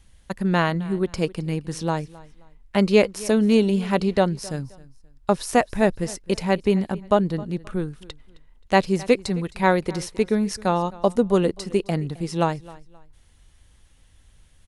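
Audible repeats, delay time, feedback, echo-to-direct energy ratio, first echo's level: 2, 0.264 s, 29%, -20.5 dB, -21.0 dB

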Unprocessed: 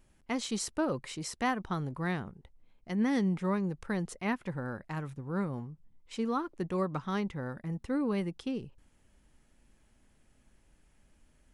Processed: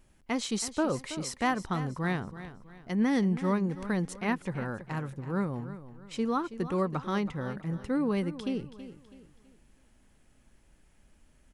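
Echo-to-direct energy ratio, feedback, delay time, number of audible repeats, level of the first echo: -13.0 dB, 37%, 0.326 s, 3, -13.5 dB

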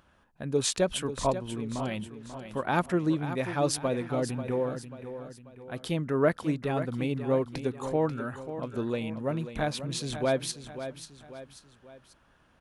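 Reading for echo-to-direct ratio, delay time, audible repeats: -10.0 dB, 0.539 s, 3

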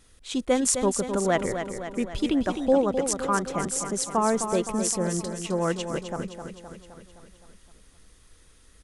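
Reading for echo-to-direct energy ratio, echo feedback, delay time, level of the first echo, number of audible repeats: -6.0 dB, 59%, 0.259 s, -8.0 dB, 6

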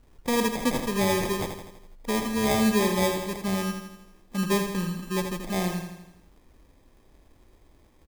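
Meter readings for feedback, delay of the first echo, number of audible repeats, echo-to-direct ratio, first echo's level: 55%, 82 ms, 6, -5.5 dB, -7.0 dB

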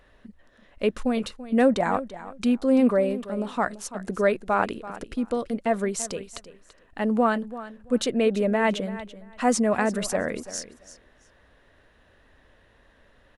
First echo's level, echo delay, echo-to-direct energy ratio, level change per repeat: -15.0 dB, 0.336 s, -15.0 dB, -15.0 dB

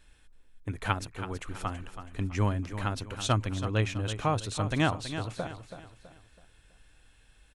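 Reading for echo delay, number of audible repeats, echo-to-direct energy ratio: 0.327 s, 3, -10.0 dB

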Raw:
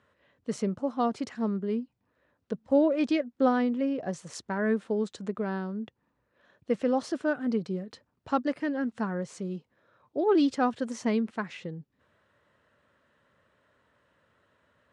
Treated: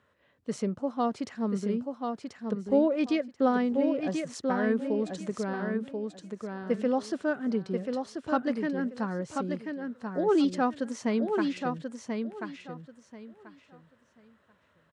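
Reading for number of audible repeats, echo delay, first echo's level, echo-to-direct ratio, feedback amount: 3, 1.036 s, -5.0 dB, -5.0 dB, 21%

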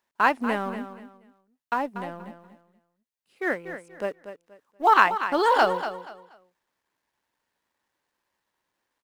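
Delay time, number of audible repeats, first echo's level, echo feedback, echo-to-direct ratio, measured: 0.239 s, 3, -11.0 dB, 26%, -10.5 dB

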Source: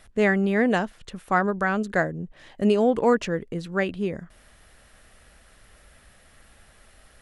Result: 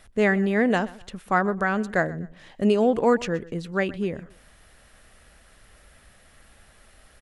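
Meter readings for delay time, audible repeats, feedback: 0.125 s, 2, 31%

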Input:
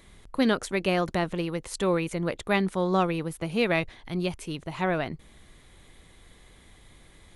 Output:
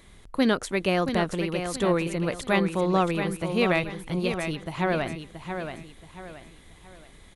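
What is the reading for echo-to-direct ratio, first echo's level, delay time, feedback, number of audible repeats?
-7.0 dB, -7.5 dB, 0.677 s, 35%, 4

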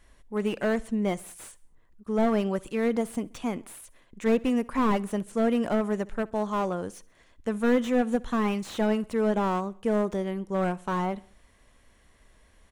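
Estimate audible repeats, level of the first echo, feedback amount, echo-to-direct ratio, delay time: 2, -23.5 dB, 51%, -22.5 dB, 66 ms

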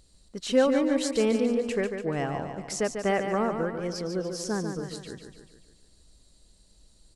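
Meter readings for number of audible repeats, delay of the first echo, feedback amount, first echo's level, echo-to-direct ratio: 6, 0.145 s, 53%, -7.0 dB, -5.5 dB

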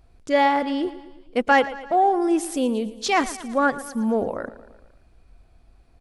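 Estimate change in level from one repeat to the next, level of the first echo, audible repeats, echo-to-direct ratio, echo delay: -5.0 dB, -16.0 dB, 4, -14.5 dB, 0.114 s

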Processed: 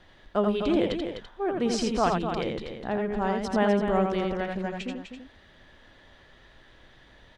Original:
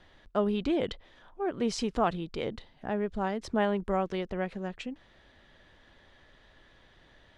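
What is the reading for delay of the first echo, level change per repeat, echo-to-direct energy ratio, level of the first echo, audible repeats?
84 ms, no steady repeat, -2.0 dB, -4.0 dB, 3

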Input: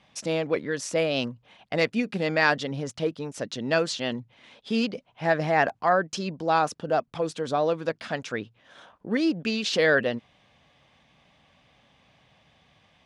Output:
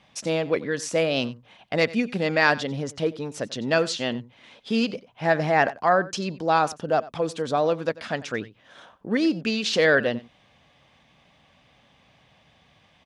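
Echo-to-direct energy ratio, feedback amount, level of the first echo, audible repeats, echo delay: -19.0 dB, no steady repeat, -19.0 dB, 1, 92 ms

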